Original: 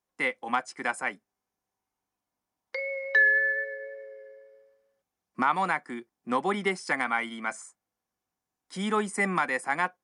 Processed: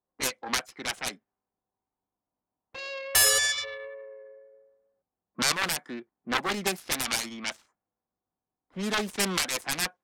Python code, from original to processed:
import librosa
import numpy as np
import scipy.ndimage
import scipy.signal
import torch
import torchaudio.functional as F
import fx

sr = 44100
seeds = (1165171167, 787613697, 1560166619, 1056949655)

y = fx.self_delay(x, sr, depth_ms=1.0)
y = fx.env_lowpass(y, sr, base_hz=970.0, full_db=-25.5)